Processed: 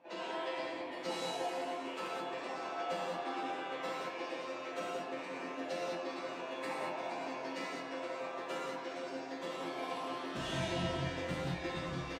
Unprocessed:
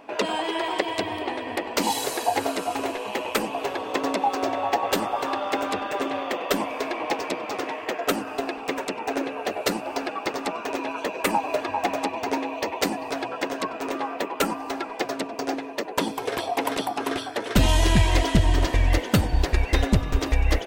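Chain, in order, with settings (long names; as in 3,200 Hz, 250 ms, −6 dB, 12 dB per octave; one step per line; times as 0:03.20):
high-pass filter 110 Hz 12 dB per octave
comb filter 5.9 ms, depth 51%
pitch vibrato 7.7 Hz 14 cents
resonators tuned to a chord F2 fifth, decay 0.29 s
time stretch by phase vocoder 0.59×
high-frequency loss of the air 63 metres
far-end echo of a speakerphone 90 ms, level −7 dB
reverb whose tail is shaped and stops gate 240 ms flat, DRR −5.5 dB
level −5.5 dB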